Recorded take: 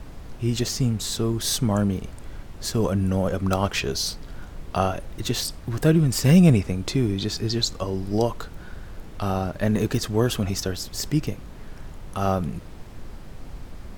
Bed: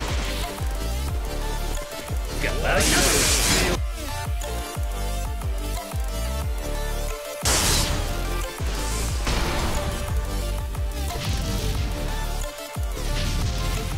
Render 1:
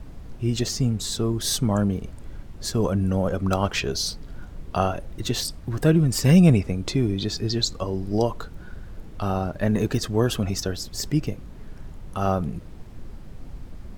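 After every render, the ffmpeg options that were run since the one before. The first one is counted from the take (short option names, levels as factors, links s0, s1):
-af "afftdn=nr=6:nf=-41"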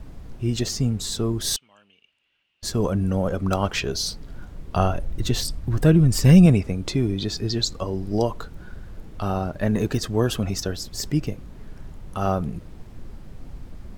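-filter_complex "[0:a]asettb=1/sr,asplit=3[s0][s1][s2];[s0]atrim=end=1.564[s3];[s1]atrim=start=1.56:end=2.63,asetpts=PTS-STARTPTS,afade=t=in:d=0.004:c=qsin,afade=t=out:st=1.066:d=0.004:c=qsin,bandpass=f=2800:t=q:w=8.8[s4];[s2]atrim=start=2.626[s5];[s3][s4]acrossfade=d=0.004:c1=hsin:c2=qsin[s6];[s6][s5]acrossfade=d=0.004:c1=qsin:c2=hsin,asettb=1/sr,asplit=3[s7][s8][s9];[s7]atrim=end=4.744[s10];[s8]atrim=start=4.74:end=6.46,asetpts=PTS-STARTPTS,afade=t=in:d=0.004:c=qsin,afade=t=out:st=1.716:d=0.004:c=qsin,lowshelf=f=110:g=10[s11];[s9]atrim=start=6.456[s12];[s10][s11]acrossfade=d=0.004:c1=hsin:c2=qsin[s13];[s13][s12]acrossfade=d=0.004:c1=qsin:c2=hsin"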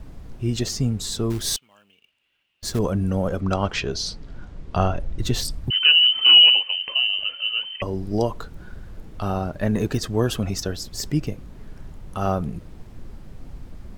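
-filter_complex "[0:a]asettb=1/sr,asplit=3[s0][s1][s2];[s0]atrim=end=1.304[s3];[s1]atrim=start=1.3:end=2.79,asetpts=PTS-STARTPTS,afade=t=in:d=0.004:c=qsin,afade=t=out:st=1.486:d=0.004:c=qsin,acrusher=bits=4:mode=log:mix=0:aa=0.000001[s4];[s2]atrim=start=2.786[s5];[s3][s4]acrossfade=d=0.004:c1=hsin:c2=qsin[s6];[s6][s5]acrossfade=d=0.004:c1=qsin:c2=hsin,asettb=1/sr,asplit=3[s7][s8][s9];[s7]atrim=end=3.404[s10];[s8]atrim=start=3.4:end=5.2,asetpts=PTS-STARTPTS,afade=t=in:d=0.004:c=qsin,afade=t=out:st=1.796:d=0.004:c=qsin,lowpass=6400[s11];[s9]atrim=start=5.196[s12];[s10][s11]acrossfade=d=0.004:c1=hsin:c2=qsin[s13];[s13][s12]acrossfade=d=0.004:c1=qsin:c2=hsin,asettb=1/sr,asplit=3[s14][s15][s16];[s14]atrim=end=5.704[s17];[s15]atrim=start=5.7:end=7.82,asetpts=PTS-STARTPTS,afade=t=in:d=0.004:c=qsin,afade=t=out:st=2.116:d=0.004:c=qsin,lowpass=f=2600:t=q:w=0.5098,lowpass=f=2600:t=q:w=0.6013,lowpass=f=2600:t=q:w=0.9,lowpass=f=2600:t=q:w=2.563,afreqshift=-3100[s18];[s16]atrim=start=7.816[s19];[s17][s18]acrossfade=d=0.004:c1=hsin:c2=qsin[s20];[s20][s19]acrossfade=d=0.004:c1=qsin:c2=hsin"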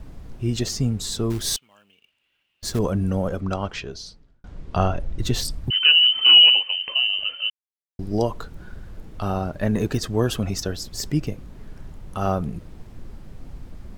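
-filter_complex "[0:a]asplit=4[s0][s1][s2][s3];[s0]atrim=end=4.44,asetpts=PTS-STARTPTS,afade=t=out:st=3.1:d=1.34[s4];[s1]atrim=start=4.44:end=7.5,asetpts=PTS-STARTPTS,afade=t=in:d=0.004:c=hsin,afade=t=out:st=3.056:d=0.004:c=hsin[s5];[s2]atrim=start=7.5:end=7.99,asetpts=PTS-STARTPTS,volume=0[s6];[s3]atrim=start=7.99,asetpts=PTS-STARTPTS,afade=t=in:d=0.004:c=hsin[s7];[s4][s5][s6][s7]concat=n=4:v=0:a=1"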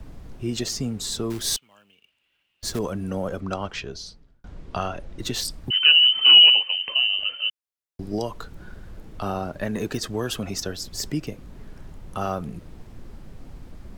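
-filter_complex "[0:a]acrossover=split=190|1200[s0][s1][s2];[s0]acompressor=threshold=0.0178:ratio=6[s3];[s1]alimiter=limit=0.112:level=0:latency=1:release=370[s4];[s3][s4][s2]amix=inputs=3:normalize=0"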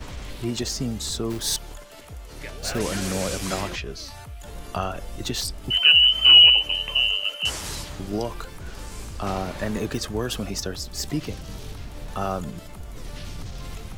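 -filter_complex "[1:a]volume=0.251[s0];[0:a][s0]amix=inputs=2:normalize=0"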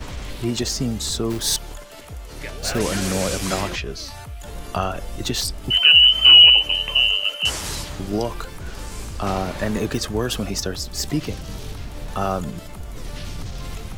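-af "volume=1.58,alimiter=limit=0.794:level=0:latency=1"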